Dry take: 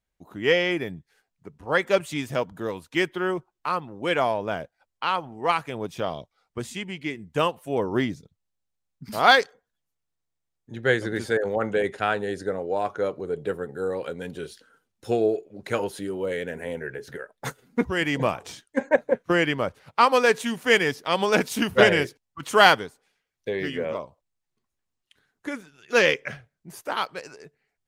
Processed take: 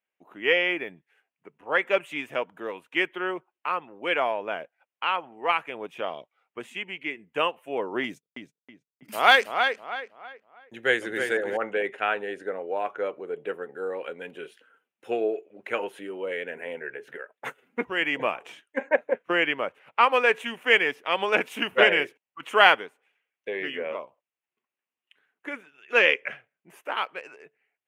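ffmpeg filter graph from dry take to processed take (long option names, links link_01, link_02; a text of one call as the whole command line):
ffmpeg -i in.wav -filter_complex "[0:a]asettb=1/sr,asplit=3[link_01][link_02][link_03];[link_01]atrim=end=8.044[link_04];[link_02]atrim=start=8.04:end=11.57,asetpts=PTS-STARTPTS,afade=type=in:duration=0.004:curve=qsin,afade=type=out:start_time=3.526:duration=0.004:curve=qsin,agate=range=-33dB:threshold=-43dB:ratio=16:release=100:detection=peak,bass=frequency=250:gain=3,treble=frequency=4000:gain=14,asplit=2[link_05][link_06];[link_06]adelay=322,lowpass=frequency=3300:poles=1,volume=-6dB,asplit=2[link_07][link_08];[link_08]adelay=322,lowpass=frequency=3300:poles=1,volume=0.35,asplit=2[link_09][link_10];[link_10]adelay=322,lowpass=frequency=3300:poles=1,volume=0.35,asplit=2[link_11][link_12];[link_12]adelay=322,lowpass=frequency=3300:poles=1,volume=0.35[link_13];[link_05][link_07][link_09][link_11][link_13]amix=inputs=5:normalize=0,atrim=end_sample=155673[link_14];[link_03]atrim=start=11.566[link_15];[link_04][link_14]acrossfade=duration=0.004:curve1=hsin:curve2=qsin[link_16];[link_16][link_15]acrossfade=duration=0.004:curve1=qsin:curve2=hsin,highpass=350,highshelf=frequency=3500:width_type=q:width=3:gain=-9,volume=-2.5dB" out.wav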